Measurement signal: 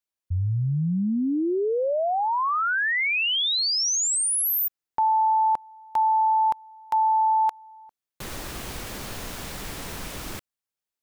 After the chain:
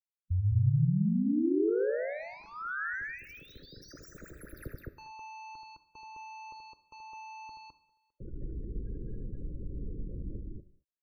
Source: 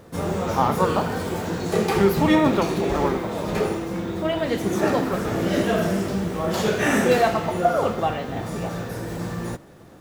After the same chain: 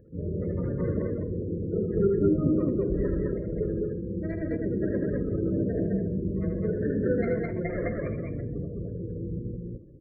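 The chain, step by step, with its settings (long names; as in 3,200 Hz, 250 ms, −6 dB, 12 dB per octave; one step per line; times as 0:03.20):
running median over 41 samples
high-shelf EQ 5,700 Hz −8 dB
phaser with its sweep stopped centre 2,900 Hz, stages 6
gate on every frequency bin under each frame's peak −20 dB strong
octave-band graphic EQ 125/250/1,000/4,000/8,000 Hz −5/−5/−6/−11/−11 dB
loudspeakers that aren't time-aligned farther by 27 metres −6 dB, 72 metres −1 dB
reverb whose tail is shaped and stops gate 250 ms falling, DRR 11.5 dB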